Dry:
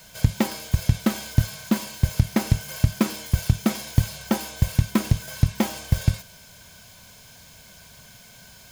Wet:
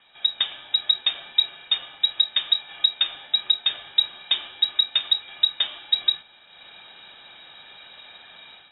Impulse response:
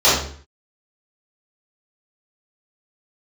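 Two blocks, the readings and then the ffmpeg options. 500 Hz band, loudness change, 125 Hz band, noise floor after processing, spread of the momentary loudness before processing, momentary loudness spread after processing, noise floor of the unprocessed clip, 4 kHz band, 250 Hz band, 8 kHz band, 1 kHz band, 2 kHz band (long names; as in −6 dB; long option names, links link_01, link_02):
below −15 dB, +3.0 dB, below −40 dB, −52 dBFS, 4 LU, 5 LU, −49 dBFS, +17.5 dB, below −30 dB, below −40 dB, −8.5 dB, −1.0 dB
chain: -af "dynaudnorm=framelen=190:gausssize=3:maxgain=11.5dB,lowpass=frequency=3300:width_type=q:width=0.5098,lowpass=frequency=3300:width_type=q:width=0.6013,lowpass=frequency=3300:width_type=q:width=0.9,lowpass=frequency=3300:width_type=q:width=2.563,afreqshift=-3900,volume=-6dB"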